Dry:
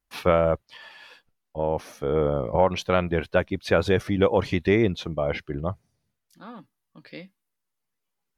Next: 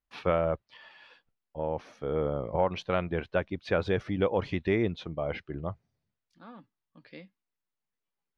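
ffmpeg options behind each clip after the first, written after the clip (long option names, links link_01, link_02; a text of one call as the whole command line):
ffmpeg -i in.wav -af "lowpass=4200,volume=-6.5dB" out.wav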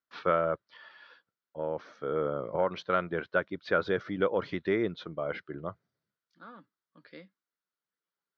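ffmpeg -i in.wav -af "highpass=190,equalizer=frequency=240:width_type=q:width=4:gain=-4,equalizer=frequency=790:width_type=q:width=4:gain=-7,equalizer=frequency=1400:width_type=q:width=4:gain=8,equalizer=frequency=2600:width_type=q:width=4:gain=-8,lowpass=frequency=5500:width=0.5412,lowpass=frequency=5500:width=1.3066" out.wav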